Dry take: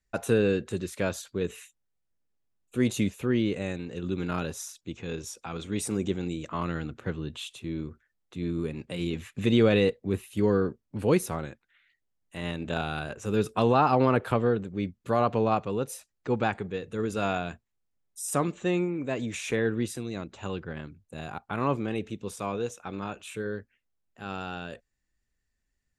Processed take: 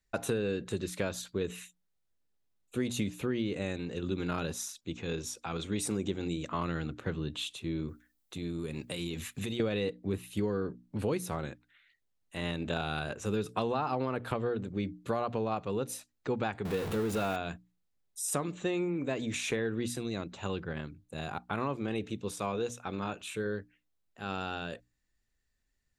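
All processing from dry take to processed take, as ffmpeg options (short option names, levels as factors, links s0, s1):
-filter_complex "[0:a]asettb=1/sr,asplit=3[s0][s1][s2];[s0]atrim=end=7.884[s3];[s1]atrim=start=7.88:end=9.6,asetpts=PTS-STARTPTS,afade=t=in:d=0.004:c=qsin,afade=t=out:st=1.716:d=0.004:c=qsin,aemphasis=mode=production:type=50kf,acompressor=threshold=0.0251:ratio=5:attack=3.2:release=140:knee=1:detection=peak[s4];[s2]atrim=start=9.596[s5];[s3][s4]acrossfade=d=0.004:c1=hsin:c2=qsin[s6];[s6][s5]acrossfade=d=0.004:c1=qsin:c2=hsin,asettb=1/sr,asplit=3[s7][s8][s9];[s7]atrim=end=16.654[s10];[s8]atrim=start=16.65:end=17.36,asetpts=PTS-STARTPTS,afade=t=in:d=0.004:c=qsin,afade=t=out:st=0.706:d=0.004:c=qsin,aeval=exprs='val(0)+0.5*0.0299*sgn(val(0))':c=same,equalizer=f=5600:t=o:w=1.9:g=-5[s11];[s9]atrim=start=17.356[s12];[s10][s11]acrossfade=d=0.004:c1=hsin:c2=qsin[s13];[s13][s12]acrossfade=d=0.004:c1=qsin:c2=hsin,equalizer=f=3900:t=o:w=0.42:g=3.5,bandreject=f=60:t=h:w=6,bandreject=f=120:t=h:w=6,bandreject=f=180:t=h:w=6,bandreject=f=240:t=h:w=6,bandreject=f=300:t=h:w=6,acompressor=threshold=0.0398:ratio=6"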